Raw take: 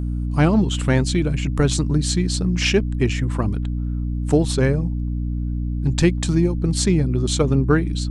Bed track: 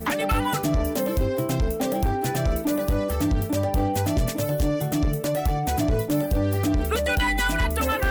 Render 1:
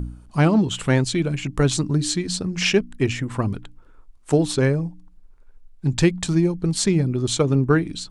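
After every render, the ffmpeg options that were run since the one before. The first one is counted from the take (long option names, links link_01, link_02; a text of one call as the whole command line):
ffmpeg -i in.wav -af "bandreject=frequency=60:width_type=h:width=4,bandreject=frequency=120:width_type=h:width=4,bandreject=frequency=180:width_type=h:width=4,bandreject=frequency=240:width_type=h:width=4,bandreject=frequency=300:width_type=h:width=4" out.wav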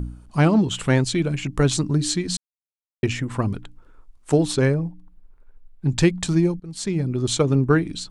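ffmpeg -i in.wav -filter_complex "[0:a]asettb=1/sr,asplit=3[link_01][link_02][link_03];[link_01]atrim=end=4.744[link_04];[link_02]atrim=start=4.74:end=5.89,asetpts=PTS-STARTPTS,afade=type=in:duration=0.004:curve=qsin,afade=type=out:start_time=1.146:duration=0.004:curve=qsin,equalizer=frequency=6700:width=0.79:gain=-10[link_05];[link_03]atrim=start=5.886[link_06];[link_04][link_05]acrossfade=duration=0.004:curve1=hsin:curve2=qsin[link_07];[link_07][link_06]acrossfade=duration=0.004:curve1=qsin:curve2=hsin,asplit=4[link_08][link_09][link_10][link_11];[link_08]atrim=end=2.37,asetpts=PTS-STARTPTS,afade=type=out:start_time=2.366:duration=0.004:curve=hsin[link_12];[link_09]atrim=start=2.37:end=3.03,asetpts=PTS-STARTPTS,volume=0[link_13];[link_10]atrim=start=3.03:end=6.6,asetpts=PTS-STARTPTS,afade=type=in:duration=0.004:curve=hsin,afade=type=out:start_time=3.566:duration=0.004:curve=hsin:silence=0.0794328[link_14];[link_11]atrim=start=6.6,asetpts=PTS-STARTPTS,afade=type=in:duration=0.63:silence=0.0794328[link_15];[link_12][link_13][link_14][link_15]concat=n=4:v=0:a=1" out.wav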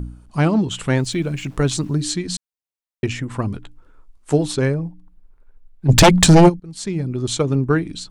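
ffmpeg -i in.wav -filter_complex "[0:a]asettb=1/sr,asplit=3[link_01][link_02][link_03];[link_01]atrim=end=0.994[link_04];[link_02]atrim=start=0.99:end=2.02,asetpts=PTS-STARTPTS,afade=type=in:duration=0.004:curve=qsin,afade=type=out:start_time=1.026:duration=0.004:curve=qsin,aeval=exprs='val(0)*gte(abs(val(0)),0.00631)':channel_layout=same[link_05];[link_03]atrim=start=2.016[link_06];[link_04][link_05]acrossfade=duration=0.004:curve1=hsin:curve2=qsin[link_07];[link_07][link_06]acrossfade=duration=0.004:curve1=qsin:curve2=hsin,asettb=1/sr,asplit=3[link_08][link_09][link_10];[link_08]atrim=end=3.504[link_11];[link_09]atrim=start=3.5:end=4.48,asetpts=PTS-STARTPTS,afade=type=in:duration=0.004:curve=qsin,afade=type=out:start_time=0.976:duration=0.004:curve=qsin,asplit=2[link_12][link_13];[link_13]adelay=14,volume=-10.5dB[link_14];[link_12][link_14]amix=inputs=2:normalize=0,atrim=end_sample=43218[link_15];[link_10]atrim=start=4.476[link_16];[link_11][link_15]acrossfade=duration=0.004:curve1=hsin:curve2=qsin[link_17];[link_17][link_16]acrossfade=duration=0.004:curve1=qsin:curve2=hsin,asplit=3[link_18][link_19][link_20];[link_18]afade=type=out:start_time=5.88:duration=0.02[link_21];[link_19]aeval=exprs='0.596*sin(PI/2*3.98*val(0)/0.596)':channel_layout=same,afade=type=in:start_time=5.88:duration=0.02,afade=type=out:start_time=6.48:duration=0.02[link_22];[link_20]afade=type=in:start_time=6.48:duration=0.02[link_23];[link_21][link_22][link_23]amix=inputs=3:normalize=0" out.wav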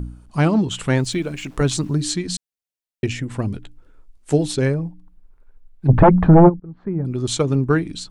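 ffmpeg -i in.wav -filter_complex "[0:a]asettb=1/sr,asplit=3[link_01][link_02][link_03];[link_01]atrim=end=1.184[link_04];[link_02]atrim=start=1.18:end=1.61,asetpts=PTS-STARTPTS,afade=type=in:duration=0.004:curve=qsin,afade=type=out:start_time=0.426:duration=0.004:curve=qsin,equalizer=frequency=130:width=1.5:gain=-8.5[link_05];[link_03]atrim=start=1.606[link_06];[link_04][link_05]acrossfade=duration=0.004:curve1=hsin:curve2=qsin[link_07];[link_07][link_06]acrossfade=duration=0.004:curve1=qsin:curve2=hsin,asettb=1/sr,asplit=3[link_08][link_09][link_10];[link_08]atrim=end=2.314[link_11];[link_09]atrim=start=2.31:end=4.66,asetpts=PTS-STARTPTS,afade=type=in:duration=0.004:curve=qsin,afade=type=out:start_time=2.346:duration=0.004:curve=qsin,equalizer=frequency=1100:width_type=o:width=0.77:gain=-7.5[link_12];[link_10]atrim=start=4.656[link_13];[link_11][link_12]acrossfade=duration=0.004:curve1=hsin:curve2=qsin[link_14];[link_14][link_13]acrossfade=duration=0.004:curve1=qsin:curve2=hsin,asettb=1/sr,asplit=3[link_15][link_16][link_17];[link_15]atrim=end=5.874[link_18];[link_16]atrim=start=5.87:end=7.05,asetpts=PTS-STARTPTS,afade=type=in:duration=0.004:curve=qsin,afade=type=out:start_time=1.176:duration=0.004:curve=qsin,lowpass=frequency=1400:width=0.5412,lowpass=frequency=1400:width=1.3066[link_19];[link_17]atrim=start=7.046[link_20];[link_18][link_19]acrossfade=duration=0.004:curve1=hsin:curve2=qsin[link_21];[link_21][link_20]acrossfade=duration=0.004:curve1=qsin:curve2=hsin" out.wav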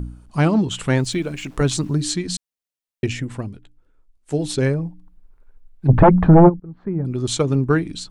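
ffmpeg -i in.wav -filter_complex "[0:a]asplit=3[link_01][link_02][link_03];[link_01]atrim=end=3.52,asetpts=PTS-STARTPTS,afade=type=out:start_time=3.25:duration=0.27:silence=0.316228[link_04];[link_02]atrim=start=3.52:end=4.26,asetpts=PTS-STARTPTS,volume=-10dB[link_05];[link_03]atrim=start=4.26,asetpts=PTS-STARTPTS,afade=type=in:duration=0.27:silence=0.316228[link_06];[link_04][link_05][link_06]concat=n=3:v=0:a=1" out.wav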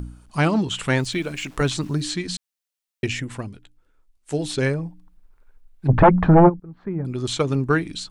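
ffmpeg -i in.wav -filter_complex "[0:a]acrossover=split=3500[link_01][link_02];[link_02]acompressor=threshold=-35dB:ratio=4:attack=1:release=60[link_03];[link_01][link_03]amix=inputs=2:normalize=0,tiltshelf=frequency=840:gain=-4" out.wav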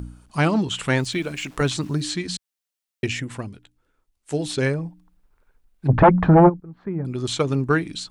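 ffmpeg -i in.wav -af "highpass=frequency=44:poles=1" out.wav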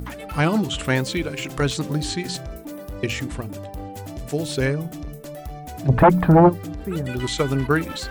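ffmpeg -i in.wav -i bed.wav -filter_complex "[1:a]volume=-11dB[link_01];[0:a][link_01]amix=inputs=2:normalize=0" out.wav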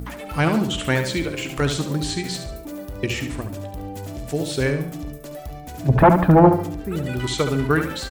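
ffmpeg -i in.wav -af "aecho=1:1:71|142|213|284:0.398|0.151|0.0575|0.0218" out.wav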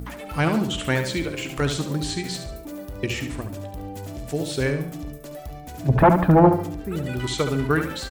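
ffmpeg -i in.wav -af "volume=-2dB" out.wav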